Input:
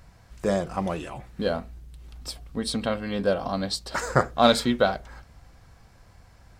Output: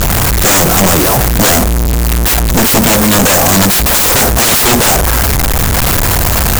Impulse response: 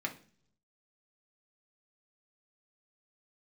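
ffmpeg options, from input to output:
-filter_complex "[0:a]aeval=exprs='val(0)+0.5*0.133*sgn(val(0))':c=same,asplit=2[a][b];[b]acontrast=81,volume=-2.5dB[c];[a][c]amix=inputs=2:normalize=0,lowpass=f=7.1k:t=q:w=5.3,aeval=exprs='(mod(2.82*val(0)+1,2)-1)/2.82':c=same,volume=4dB"

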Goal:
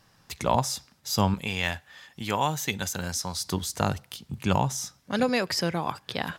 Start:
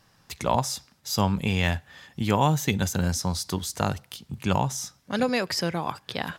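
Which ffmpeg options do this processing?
-filter_complex "[0:a]asettb=1/sr,asplit=3[a][b][c];[a]atrim=end=1.344[d];[b]atrim=start=1.34:end=3.41,asetpts=PTS-STARTPTS,afade=t=in:d=0.004:c=qsin,afade=t=out:st=2.066:d=0.004:c=qsin,lowshelf=f=460:g=-10.5[e];[c]atrim=start=3.406[f];[d][e]acrossfade=d=0.004:c1=hsin:c2=qsin[g];[g][f]acrossfade=d=0.004:c1=qsin:c2=hsin"

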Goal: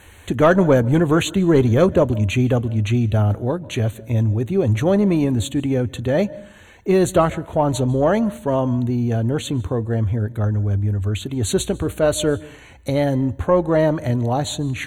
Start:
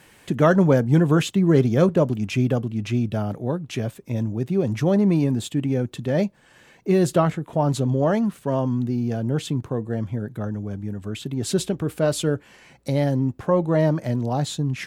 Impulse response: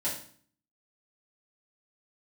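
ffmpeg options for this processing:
-filter_complex "[0:a]asuperstop=centerf=5100:order=20:qfactor=3.5,asplit=2[a][b];[1:a]atrim=start_sample=2205,adelay=138[c];[b][c]afir=irnorm=-1:irlink=0,volume=-27.5dB[d];[a][d]amix=inputs=2:normalize=0,acontrast=25,lowshelf=f=110:t=q:w=3:g=9"

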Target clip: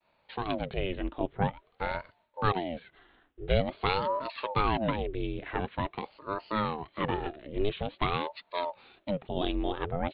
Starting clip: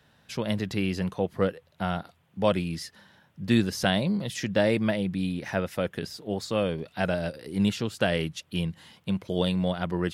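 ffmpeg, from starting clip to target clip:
-af "agate=range=-33dB:threshold=-57dB:ratio=3:detection=peak,aresample=8000,aresample=44100,aeval=exprs='val(0)*sin(2*PI*470*n/s+470*0.7/0.47*sin(2*PI*0.47*n/s))':c=same,volume=-1dB"

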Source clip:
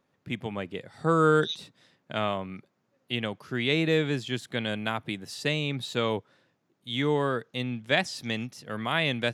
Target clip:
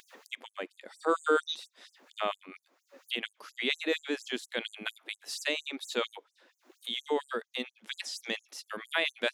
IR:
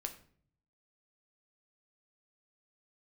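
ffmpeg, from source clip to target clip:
-af "acompressor=mode=upward:threshold=-29dB:ratio=2.5,afftfilt=real='re*gte(b*sr/1024,210*pow(6300/210,0.5+0.5*sin(2*PI*4.3*pts/sr)))':imag='im*gte(b*sr/1024,210*pow(6300/210,0.5+0.5*sin(2*PI*4.3*pts/sr)))':win_size=1024:overlap=0.75,volume=-1.5dB"

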